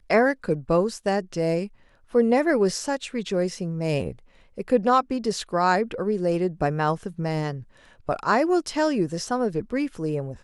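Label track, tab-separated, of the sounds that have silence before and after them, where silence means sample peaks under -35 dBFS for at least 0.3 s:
2.140000	4.130000	sound
4.580000	7.620000	sound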